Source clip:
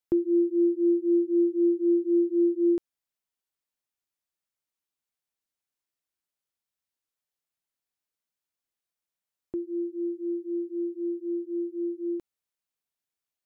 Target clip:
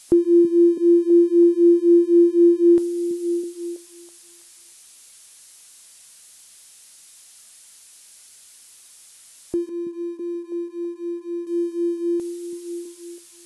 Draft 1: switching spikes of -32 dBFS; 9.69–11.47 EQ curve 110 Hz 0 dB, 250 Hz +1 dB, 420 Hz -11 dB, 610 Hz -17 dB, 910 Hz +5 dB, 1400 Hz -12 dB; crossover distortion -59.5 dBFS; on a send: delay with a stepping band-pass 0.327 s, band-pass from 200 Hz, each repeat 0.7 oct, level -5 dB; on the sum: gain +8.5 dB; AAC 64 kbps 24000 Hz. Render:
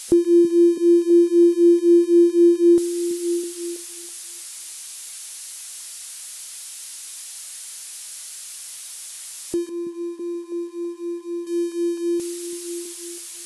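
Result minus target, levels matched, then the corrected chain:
switching spikes: distortion +10 dB
switching spikes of -42.5 dBFS; 9.69–11.47 EQ curve 110 Hz 0 dB, 250 Hz +1 dB, 420 Hz -11 dB, 610 Hz -17 dB, 910 Hz +5 dB, 1400 Hz -12 dB; crossover distortion -59.5 dBFS; on a send: delay with a stepping band-pass 0.327 s, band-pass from 200 Hz, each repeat 0.7 oct, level -5 dB; on the sum: gain +8.5 dB; AAC 64 kbps 24000 Hz

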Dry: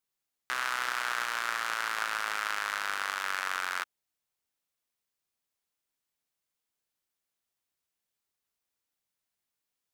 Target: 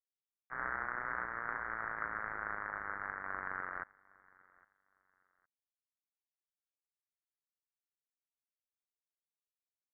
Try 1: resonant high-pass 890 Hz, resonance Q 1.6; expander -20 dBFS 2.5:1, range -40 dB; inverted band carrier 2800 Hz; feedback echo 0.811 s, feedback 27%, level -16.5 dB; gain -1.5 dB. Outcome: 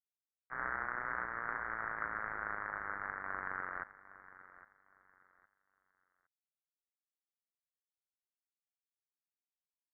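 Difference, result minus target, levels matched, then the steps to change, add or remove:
echo-to-direct +8.5 dB
change: feedback echo 0.811 s, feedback 27%, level -25 dB

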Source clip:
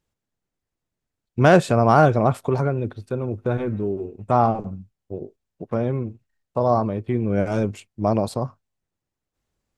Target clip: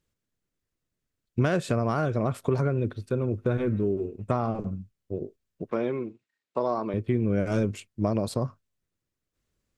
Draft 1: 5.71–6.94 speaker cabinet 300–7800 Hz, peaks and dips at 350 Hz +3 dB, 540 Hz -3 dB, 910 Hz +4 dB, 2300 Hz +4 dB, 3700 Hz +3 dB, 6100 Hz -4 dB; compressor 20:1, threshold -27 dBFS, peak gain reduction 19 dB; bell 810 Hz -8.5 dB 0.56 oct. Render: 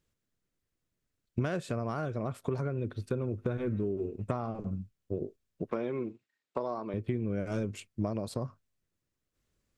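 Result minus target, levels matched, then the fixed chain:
compressor: peak gain reduction +8 dB
5.71–6.94 speaker cabinet 300–7800 Hz, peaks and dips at 350 Hz +3 dB, 540 Hz -3 dB, 910 Hz +4 dB, 2300 Hz +4 dB, 3700 Hz +3 dB, 6100 Hz -4 dB; compressor 20:1, threshold -18.5 dBFS, peak gain reduction 11 dB; bell 810 Hz -8.5 dB 0.56 oct

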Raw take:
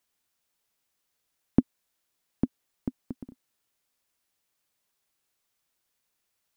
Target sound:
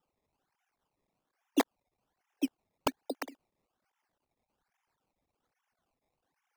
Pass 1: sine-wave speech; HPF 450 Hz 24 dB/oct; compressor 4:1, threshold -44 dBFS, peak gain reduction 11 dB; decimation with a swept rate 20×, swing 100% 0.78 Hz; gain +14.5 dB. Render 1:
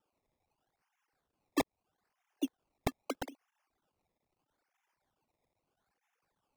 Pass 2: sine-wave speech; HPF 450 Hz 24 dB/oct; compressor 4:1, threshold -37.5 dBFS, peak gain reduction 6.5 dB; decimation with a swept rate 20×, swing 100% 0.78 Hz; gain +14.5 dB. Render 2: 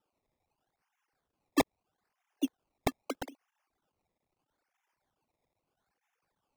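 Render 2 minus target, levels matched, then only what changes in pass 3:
decimation with a swept rate: distortion +5 dB
change: decimation with a swept rate 20×, swing 100% 1.2 Hz

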